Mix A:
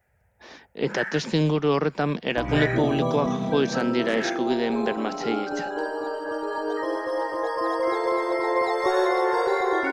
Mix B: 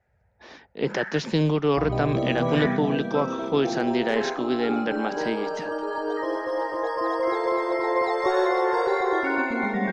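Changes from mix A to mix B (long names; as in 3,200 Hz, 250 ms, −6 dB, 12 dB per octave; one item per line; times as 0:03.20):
first sound: add low-pass filter 1,700 Hz 6 dB per octave
second sound: entry −0.60 s
master: add high-frequency loss of the air 54 metres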